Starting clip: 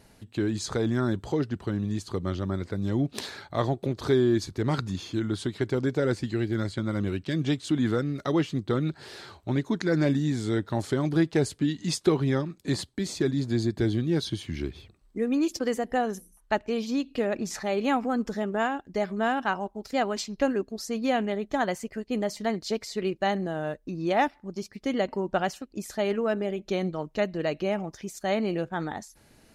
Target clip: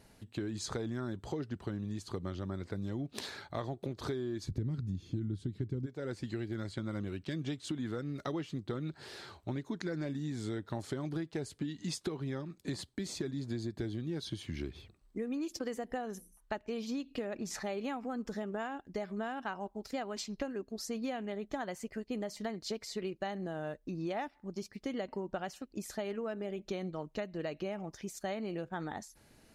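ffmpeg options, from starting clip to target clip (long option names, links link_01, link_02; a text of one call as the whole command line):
ffmpeg -i in.wav -filter_complex "[0:a]asplit=3[link_01][link_02][link_03];[link_01]afade=type=out:start_time=4.48:duration=0.02[link_04];[link_02]asubboost=boost=12:cutoff=240,afade=type=in:start_time=4.48:duration=0.02,afade=type=out:start_time=5.85:duration=0.02[link_05];[link_03]afade=type=in:start_time=5.85:duration=0.02[link_06];[link_04][link_05][link_06]amix=inputs=3:normalize=0,acompressor=threshold=-29dB:ratio=10,volume=-4.5dB" out.wav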